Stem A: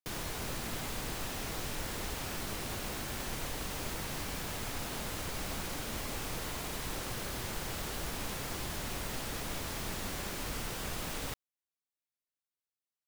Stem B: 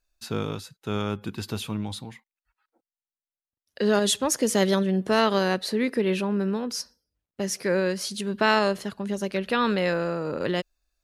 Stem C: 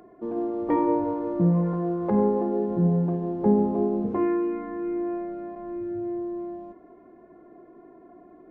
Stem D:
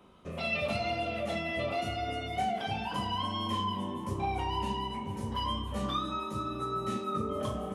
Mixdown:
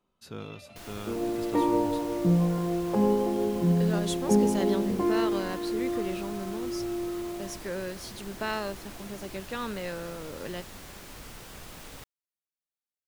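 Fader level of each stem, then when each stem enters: -6.5, -11.0, -2.0, -19.5 dB; 0.70, 0.00, 0.85, 0.00 s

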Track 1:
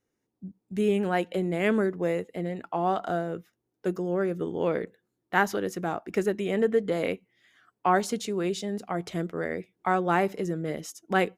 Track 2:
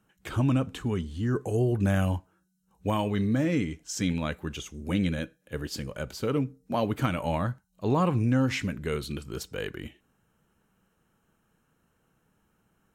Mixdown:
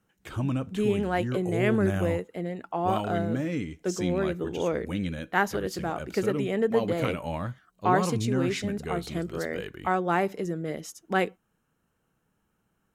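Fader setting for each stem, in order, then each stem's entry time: -1.0, -4.0 dB; 0.00, 0.00 s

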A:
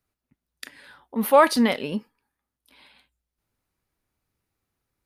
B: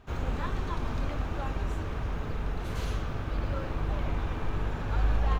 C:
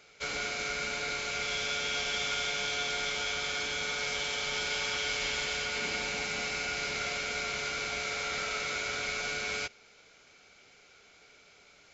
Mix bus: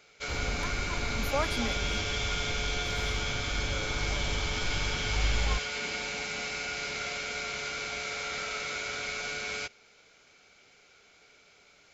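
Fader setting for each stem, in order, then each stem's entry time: -15.5, -3.0, -1.0 dB; 0.00, 0.20, 0.00 s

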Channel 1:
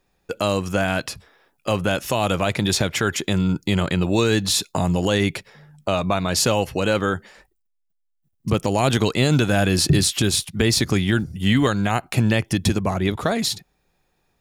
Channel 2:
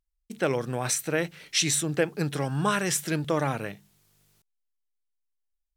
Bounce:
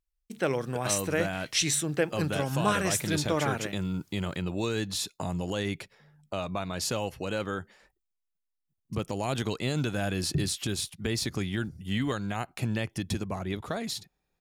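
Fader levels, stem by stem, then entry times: -11.5, -2.0 dB; 0.45, 0.00 s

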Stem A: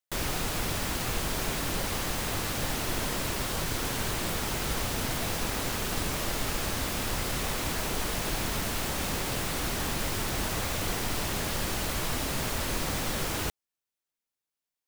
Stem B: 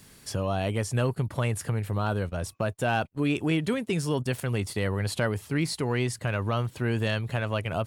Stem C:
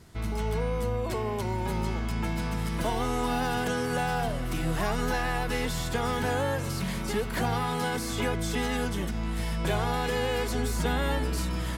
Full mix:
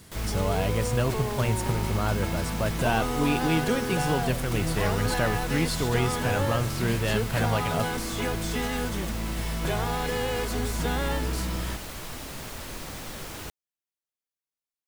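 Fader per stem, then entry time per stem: -7.0, 0.0, -0.5 dB; 0.00, 0.00, 0.00 s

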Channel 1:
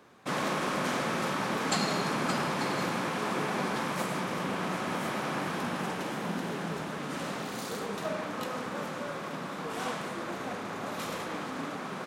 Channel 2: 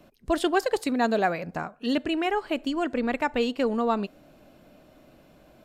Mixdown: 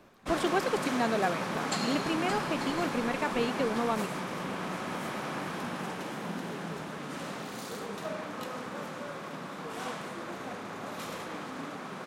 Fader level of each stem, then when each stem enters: -3.0, -5.5 dB; 0.00, 0.00 s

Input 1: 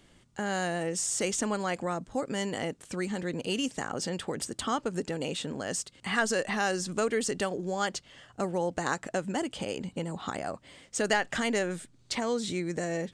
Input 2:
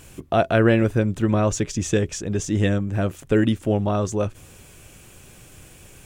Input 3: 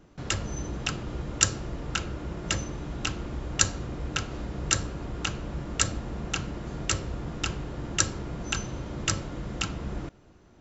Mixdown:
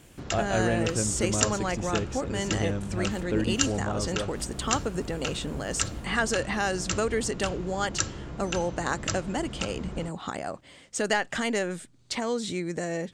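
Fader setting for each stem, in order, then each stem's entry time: +1.0, -9.5, -3.5 dB; 0.00, 0.00, 0.00 s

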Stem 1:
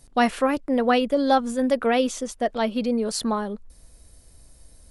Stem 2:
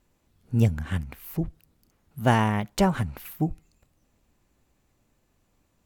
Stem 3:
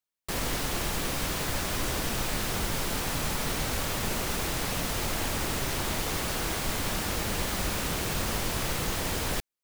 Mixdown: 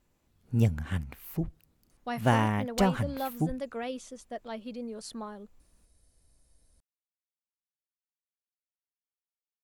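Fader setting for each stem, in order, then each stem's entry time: -15.0 dB, -3.5 dB, off; 1.90 s, 0.00 s, off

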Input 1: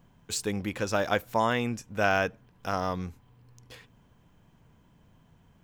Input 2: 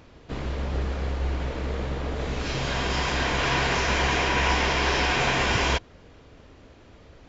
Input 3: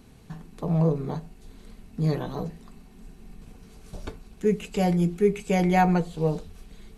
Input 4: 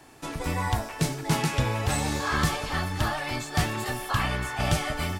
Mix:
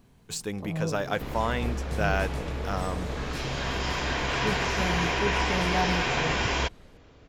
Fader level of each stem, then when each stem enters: -2.5, -3.5, -9.0, -15.5 dB; 0.00, 0.90, 0.00, 0.90 s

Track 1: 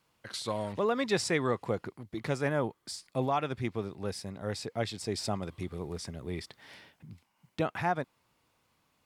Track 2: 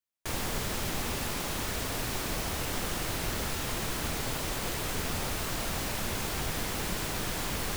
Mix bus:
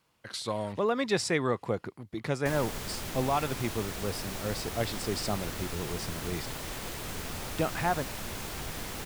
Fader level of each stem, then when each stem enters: +1.0, -5.0 dB; 0.00, 2.20 s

